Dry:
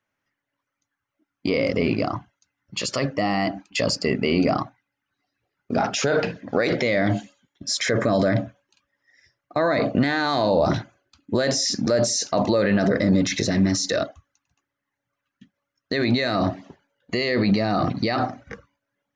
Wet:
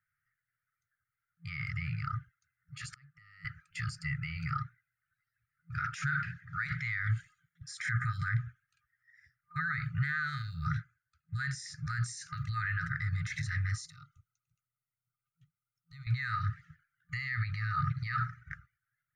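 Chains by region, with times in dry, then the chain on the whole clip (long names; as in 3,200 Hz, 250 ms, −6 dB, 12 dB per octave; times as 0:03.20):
0:02.92–0:03.45: gate with flip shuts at −20 dBFS, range −28 dB + multiband upward and downward compressor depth 100%
0:10.42–0:12.06: notch filter 3,000 Hz, Q 18 + expander for the loud parts, over −34 dBFS
0:13.86–0:16.07: downward compressor 2 to 1, threshold −39 dBFS + phaser with its sweep stopped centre 340 Hz, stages 8
whole clip: brick-wall band-stop 170–1,200 Hz; brickwall limiter −20 dBFS; flat-topped bell 4,200 Hz −15.5 dB; level −2 dB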